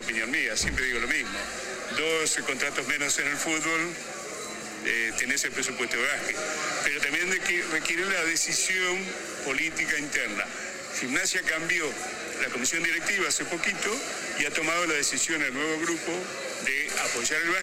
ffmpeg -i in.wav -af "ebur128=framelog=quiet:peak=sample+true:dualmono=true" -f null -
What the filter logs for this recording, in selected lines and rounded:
Integrated loudness:
  I:         -23.5 LUFS
  Threshold: -33.5 LUFS
Loudness range:
  LRA:         1.8 LU
  Threshold: -43.5 LUFS
  LRA low:   -24.3 LUFS
  LRA high:  -22.5 LUFS
Sample peak:
  Peak:      -10.2 dBFS
True peak:
  Peak:      -10.2 dBFS